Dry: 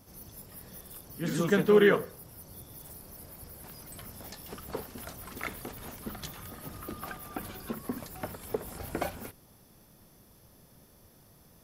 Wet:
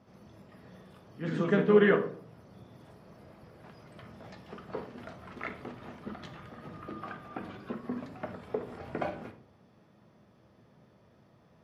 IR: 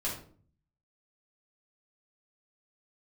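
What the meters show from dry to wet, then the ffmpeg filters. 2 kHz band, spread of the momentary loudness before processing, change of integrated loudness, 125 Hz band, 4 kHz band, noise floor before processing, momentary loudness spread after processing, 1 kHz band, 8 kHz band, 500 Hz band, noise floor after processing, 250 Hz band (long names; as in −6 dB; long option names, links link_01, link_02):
−1.5 dB, 20 LU, 0.0 dB, −0.5 dB, −6.5 dB, −59 dBFS, 25 LU, −0.5 dB, below −20 dB, −1.0 dB, −62 dBFS, +0.5 dB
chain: -filter_complex "[0:a]highpass=120,lowpass=2600,asplit=2[link_01][link_02];[1:a]atrim=start_sample=2205[link_03];[link_02][link_03]afir=irnorm=-1:irlink=0,volume=-7dB[link_04];[link_01][link_04]amix=inputs=2:normalize=0,volume=-3.5dB"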